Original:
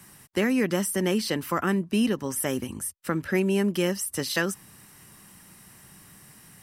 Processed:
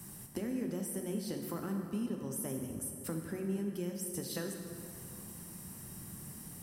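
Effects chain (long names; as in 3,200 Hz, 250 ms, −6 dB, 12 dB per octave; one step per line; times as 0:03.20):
parametric band 2,100 Hz −12.5 dB 2.9 octaves
downward compressor 4 to 1, threshold −44 dBFS, peak gain reduction 18.5 dB
dense smooth reverb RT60 2.7 s, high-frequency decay 0.6×, DRR 2.5 dB
level +4 dB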